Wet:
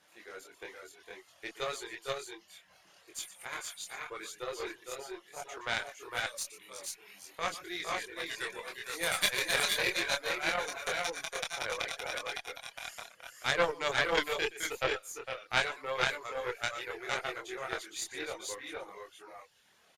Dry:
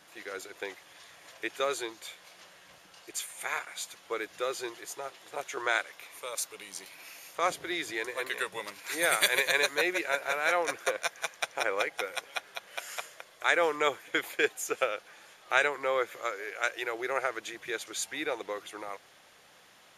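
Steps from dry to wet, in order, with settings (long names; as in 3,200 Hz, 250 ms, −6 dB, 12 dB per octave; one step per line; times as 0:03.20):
multi-tap delay 120/457/481 ms −8.5/−5.5/−3.5 dB
reverb reduction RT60 0.79 s
multi-voice chorus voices 4, 0.8 Hz, delay 24 ms, depth 2.8 ms
harmonic generator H 3 −17 dB, 4 −18 dB, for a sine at −13 dBFS
dynamic equaliser 4,600 Hz, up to +6 dB, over −49 dBFS, Q 0.83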